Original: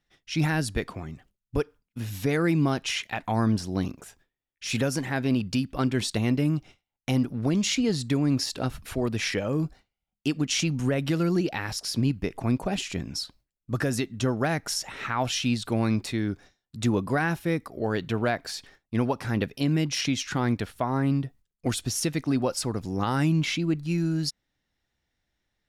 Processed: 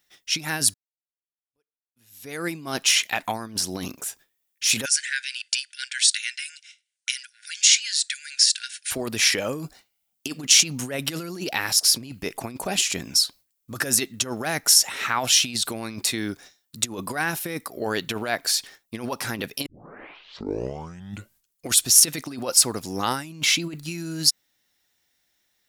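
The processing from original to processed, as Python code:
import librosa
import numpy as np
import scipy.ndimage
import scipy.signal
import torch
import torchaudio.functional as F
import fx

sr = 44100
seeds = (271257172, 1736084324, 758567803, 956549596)

y = fx.brickwall_bandpass(x, sr, low_hz=1400.0, high_hz=10000.0, at=(4.84, 8.9), fade=0.02)
y = fx.edit(y, sr, fx.fade_in_span(start_s=0.74, length_s=1.82, curve='exp'),
    fx.tape_start(start_s=19.66, length_s=2.01), tone=tone)
y = fx.low_shelf(y, sr, hz=390.0, db=2.5)
y = fx.over_compress(y, sr, threshold_db=-25.0, ratio=-0.5)
y = fx.riaa(y, sr, side='recording')
y = y * librosa.db_to_amplitude(2.0)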